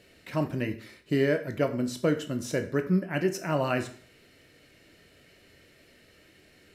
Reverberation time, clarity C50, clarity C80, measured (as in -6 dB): 0.45 s, 12.0 dB, 16.0 dB